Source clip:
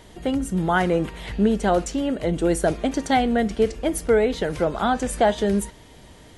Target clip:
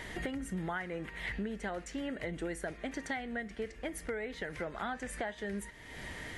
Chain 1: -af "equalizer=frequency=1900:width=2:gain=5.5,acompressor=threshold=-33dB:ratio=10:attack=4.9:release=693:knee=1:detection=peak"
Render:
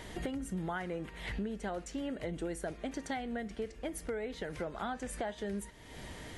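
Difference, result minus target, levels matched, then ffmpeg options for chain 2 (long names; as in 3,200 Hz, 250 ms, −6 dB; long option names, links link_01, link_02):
2,000 Hz band −4.5 dB
-af "equalizer=frequency=1900:width=2:gain=14.5,acompressor=threshold=-33dB:ratio=10:attack=4.9:release=693:knee=1:detection=peak"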